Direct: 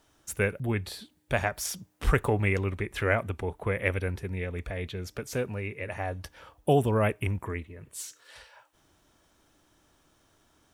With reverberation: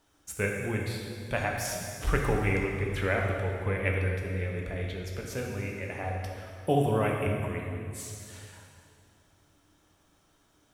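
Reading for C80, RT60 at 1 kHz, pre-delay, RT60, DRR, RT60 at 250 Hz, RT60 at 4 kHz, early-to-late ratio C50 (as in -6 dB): 3.0 dB, 2.3 s, 7 ms, 2.4 s, -0.5 dB, 2.8 s, 2.1 s, 2.0 dB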